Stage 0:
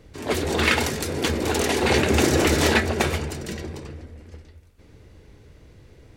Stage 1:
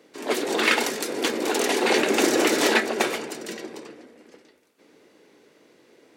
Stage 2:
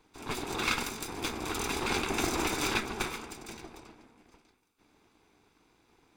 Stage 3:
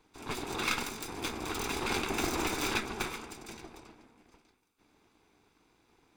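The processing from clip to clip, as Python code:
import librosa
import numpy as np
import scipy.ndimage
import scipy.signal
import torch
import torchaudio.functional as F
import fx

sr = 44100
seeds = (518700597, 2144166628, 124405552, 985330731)

y1 = scipy.signal.sosfilt(scipy.signal.butter(4, 250.0, 'highpass', fs=sr, output='sos'), x)
y2 = fx.lower_of_two(y1, sr, delay_ms=0.82)
y2 = y2 * 10.0 ** (-8.0 / 20.0)
y3 = fx.tracing_dist(y2, sr, depth_ms=0.053)
y3 = y3 * 10.0 ** (-1.5 / 20.0)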